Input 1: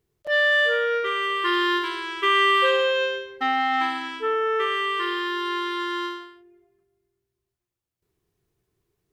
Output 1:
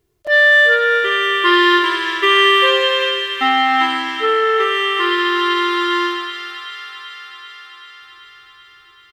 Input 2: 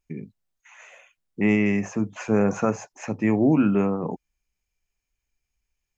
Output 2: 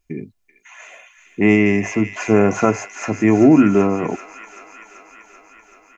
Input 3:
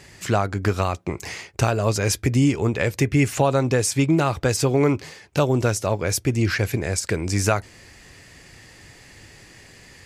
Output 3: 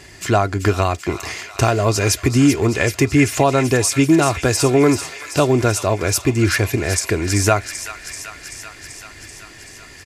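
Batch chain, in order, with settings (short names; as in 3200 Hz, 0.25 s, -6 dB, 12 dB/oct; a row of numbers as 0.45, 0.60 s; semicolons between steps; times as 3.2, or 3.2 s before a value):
comb 2.9 ms, depth 40%; on a send: thin delay 0.385 s, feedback 72%, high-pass 1600 Hz, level -8 dB; on the sum: normalise peaks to -1.5 dBFS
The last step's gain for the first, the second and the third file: +7.0, +7.0, +4.5 dB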